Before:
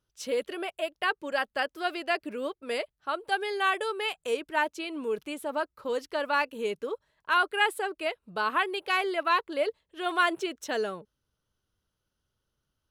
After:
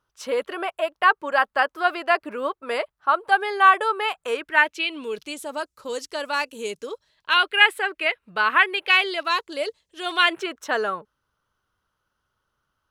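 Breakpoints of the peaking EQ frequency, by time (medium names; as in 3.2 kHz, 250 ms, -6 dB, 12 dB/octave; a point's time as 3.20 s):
peaking EQ +14 dB 1.6 oct
4.18 s 1.1 kHz
5.51 s 7.1 kHz
6.75 s 7.1 kHz
7.74 s 2 kHz
8.80 s 2 kHz
9.33 s 6.4 kHz
10.02 s 6.4 kHz
10.50 s 1.2 kHz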